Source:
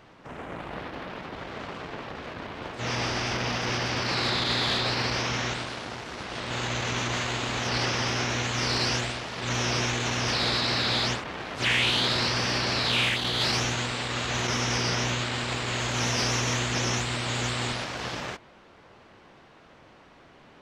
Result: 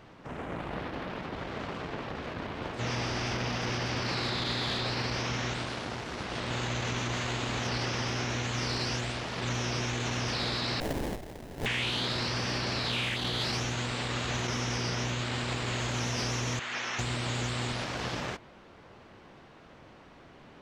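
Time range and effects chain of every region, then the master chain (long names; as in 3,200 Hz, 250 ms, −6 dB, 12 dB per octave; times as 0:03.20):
0:10.80–0:11.66: lower of the sound and its delayed copy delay 4.1 ms + inverse Chebyshev band-stop filter 150–650 Hz, stop band 60 dB + sample-rate reduction 1,300 Hz, jitter 20%
0:16.59–0:16.99: resonant band-pass 1,800 Hz, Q 1 + double-tracking delay 21 ms −13 dB
whole clip: low-shelf EQ 400 Hz +4.5 dB; downward compressor, threshold −27 dBFS; level −1.5 dB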